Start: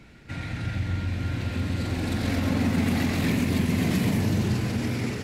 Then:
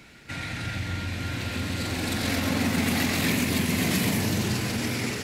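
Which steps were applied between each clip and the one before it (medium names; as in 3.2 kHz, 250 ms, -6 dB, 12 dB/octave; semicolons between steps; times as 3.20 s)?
tilt EQ +2 dB/octave; trim +2.5 dB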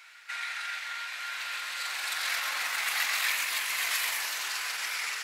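ladder high-pass 950 Hz, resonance 30%; trim +5.5 dB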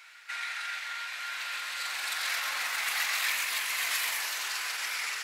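transformer saturation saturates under 3.3 kHz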